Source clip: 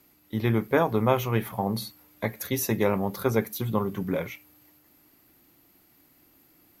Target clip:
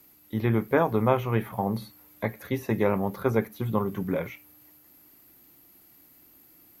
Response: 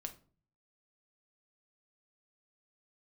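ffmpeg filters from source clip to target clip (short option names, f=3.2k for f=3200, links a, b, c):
-filter_complex "[0:a]highshelf=f=7.3k:g=8.5,acrossover=split=2600[a][b];[b]acompressor=threshold=-50dB:ratio=4:attack=1:release=60[c];[a][c]amix=inputs=2:normalize=0"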